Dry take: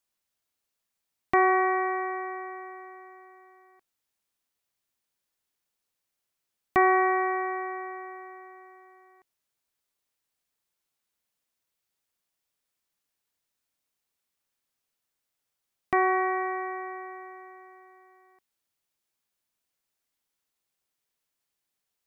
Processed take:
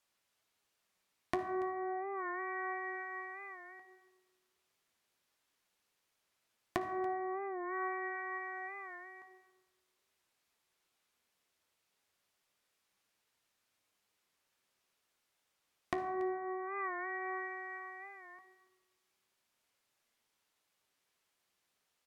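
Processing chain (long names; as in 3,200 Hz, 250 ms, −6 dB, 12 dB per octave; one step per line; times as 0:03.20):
low-pass filter 2,300 Hz 6 dB per octave
treble cut that deepens with the level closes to 580 Hz, closed at −28 dBFS
spectral tilt +1.5 dB per octave
hum removal 53.45 Hz, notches 38
downward compressor 2.5 to 1, threshold −47 dBFS, peak gain reduction 15 dB
flanger 0.15 Hz, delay 8.6 ms, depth 5.9 ms, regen +66%
single-tap delay 284 ms −18.5 dB
on a send at −10 dB: convolution reverb RT60 1.5 s, pre-delay 53 ms
on the sum: wow of a warped record 45 rpm, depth 100 cents
level +11.5 dB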